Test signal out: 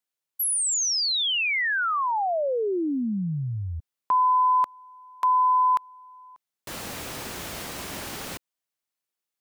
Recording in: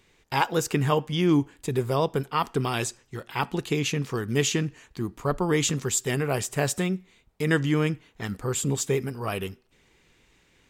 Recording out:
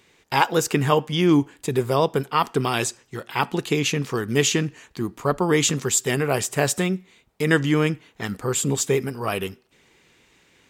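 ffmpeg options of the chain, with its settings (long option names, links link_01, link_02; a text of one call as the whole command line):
ffmpeg -i in.wav -af "highpass=frequency=150:poles=1,volume=5dB" out.wav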